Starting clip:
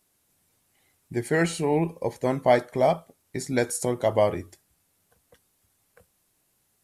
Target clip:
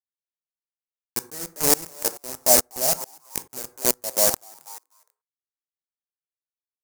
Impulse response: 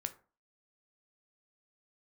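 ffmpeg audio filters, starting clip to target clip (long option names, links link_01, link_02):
-filter_complex "[0:a]highpass=frequency=160:width=0.5412,highpass=frequency=160:width=1.3066,highshelf=frequency=2100:gain=3,bandreject=frequency=60:width_type=h:width=6,bandreject=frequency=120:width_type=h:width=6,bandreject=frequency=180:width_type=h:width=6,bandreject=frequency=240:width_type=h:width=6,bandreject=frequency=300:width_type=h:width=6,bandreject=frequency=360:width_type=h:width=6,bandreject=frequency=420:width_type=h:width=6,bandreject=frequency=480:width_type=h:width=6,acrossover=split=690|1400[link_01][link_02][link_03];[link_03]acompressor=threshold=-46dB:ratio=6[link_04];[link_01][link_02][link_04]amix=inputs=3:normalize=0,acrusher=bits=3:mix=0:aa=0.000001,asplit=4[link_05][link_06][link_07][link_08];[link_06]adelay=245,afreqshift=140,volume=-17dB[link_09];[link_07]adelay=490,afreqshift=280,volume=-25.9dB[link_10];[link_08]adelay=735,afreqshift=420,volume=-34.7dB[link_11];[link_05][link_09][link_10][link_11]amix=inputs=4:normalize=0,aexciter=amount=5.4:drive=8.2:freq=4900,asplit=2[link_12][link_13];[1:a]atrim=start_sample=2205,asetrate=41454,aresample=44100[link_14];[link_13][link_14]afir=irnorm=-1:irlink=0,volume=-1dB[link_15];[link_12][link_15]amix=inputs=2:normalize=0,aeval=exprs='val(0)*pow(10,-26*if(lt(mod(-2.3*n/s,1),2*abs(-2.3)/1000),1-mod(-2.3*n/s,1)/(2*abs(-2.3)/1000),(mod(-2.3*n/s,1)-2*abs(-2.3)/1000)/(1-2*abs(-2.3)/1000))/20)':channel_layout=same,volume=-2.5dB"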